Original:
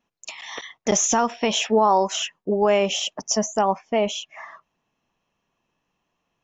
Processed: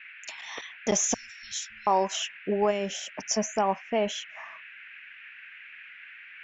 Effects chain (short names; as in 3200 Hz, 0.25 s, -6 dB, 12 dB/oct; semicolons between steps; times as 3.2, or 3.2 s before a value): 1.14–1.87 Chebyshev band-stop 110–3900 Hz, order 4; 2.7–3.15 bell 870 Hz -> 3000 Hz -10 dB 2.7 oct; band noise 1500–2700 Hz -42 dBFS; gain -5 dB